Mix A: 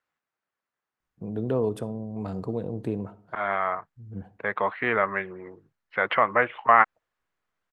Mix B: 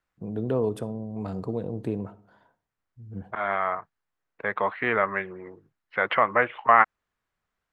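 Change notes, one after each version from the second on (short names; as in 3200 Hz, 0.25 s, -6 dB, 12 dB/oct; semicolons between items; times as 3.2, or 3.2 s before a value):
first voice: entry -1.00 s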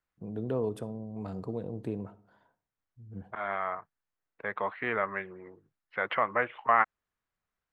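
first voice -5.5 dB; second voice -6.5 dB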